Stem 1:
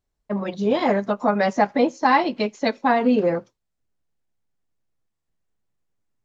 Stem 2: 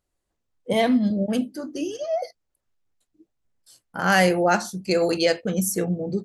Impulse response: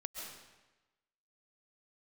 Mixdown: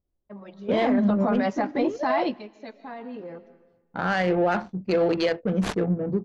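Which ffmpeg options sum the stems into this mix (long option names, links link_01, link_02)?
-filter_complex "[0:a]alimiter=limit=-14.5dB:level=0:latency=1:release=15,volume=-2.5dB,asplit=2[link_01][link_02];[link_02]volume=-22.5dB[link_03];[1:a]aemphasis=mode=production:type=75kf,adynamicsmooth=sensitivity=1.5:basefreq=570,lowpass=frequency=1900:poles=1,volume=1dB,asplit=2[link_04][link_05];[link_05]apad=whole_len=275397[link_06];[link_01][link_06]sidechaingate=range=-16dB:threshold=-43dB:ratio=16:detection=peak[link_07];[2:a]atrim=start_sample=2205[link_08];[link_03][link_08]afir=irnorm=-1:irlink=0[link_09];[link_07][link_04][link_09]amix=inputs=3:normalize=0,lowpass=5100,alimiter=limit=-14.5dB:level=0:latency=1:release=14"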